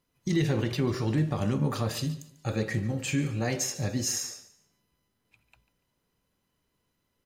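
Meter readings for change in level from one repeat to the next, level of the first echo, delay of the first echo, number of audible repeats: -11.5 dB, -17.0 dB, 144 ms, 2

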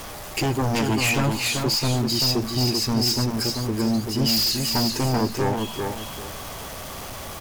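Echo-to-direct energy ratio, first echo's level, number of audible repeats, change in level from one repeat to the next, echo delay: -4.0 dB, -4.5 dB, 2, -11.0 dB, 388 ms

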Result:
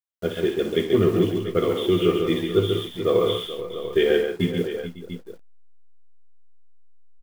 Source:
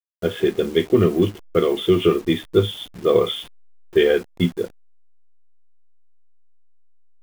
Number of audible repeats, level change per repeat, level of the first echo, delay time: 6, no regular repeats, -10.0 dB, 60 ms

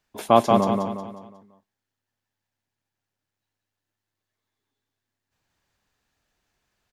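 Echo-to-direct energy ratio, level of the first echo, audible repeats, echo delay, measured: -2.5 dB, -3.5 dB, 5, 181 ms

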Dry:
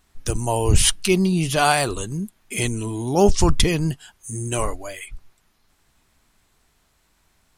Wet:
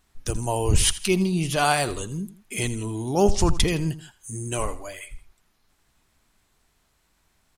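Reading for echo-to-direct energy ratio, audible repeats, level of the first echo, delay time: -15.5 dB, 2, -16.0 dB, 82 ms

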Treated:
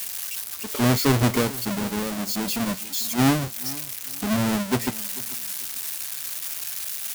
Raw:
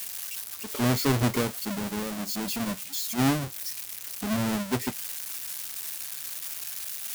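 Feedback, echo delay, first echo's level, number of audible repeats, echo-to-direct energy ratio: 25%, 444 ms, -19.0 dB, 2, -19.0 dB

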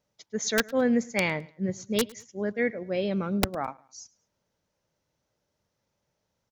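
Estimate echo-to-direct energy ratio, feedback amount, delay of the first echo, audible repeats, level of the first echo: -22.5 dB, 36%, 106 ms, 2, -23.0 dB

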